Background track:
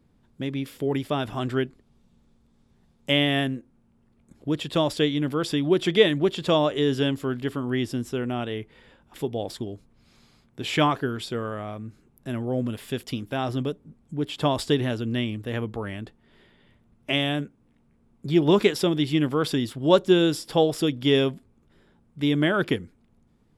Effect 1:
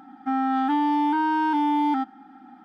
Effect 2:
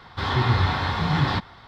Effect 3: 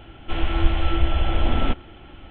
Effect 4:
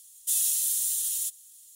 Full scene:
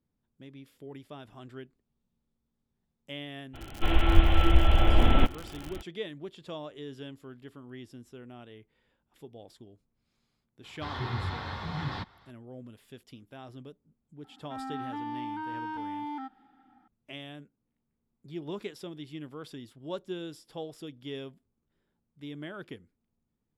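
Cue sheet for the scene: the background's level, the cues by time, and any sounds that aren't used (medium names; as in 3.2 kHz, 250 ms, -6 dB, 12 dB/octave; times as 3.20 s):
background track -19 dB
3.53 s: add 3 -0.5 dB, fades 0.02 s + crackle 100 per s -30 dBFS
10.64 s: add 2 -12.5 dB
14.24 s: add 1 -15.5 dB + peaking EQ 2 kHz +3.5 dB 2.1 oct
not used: 4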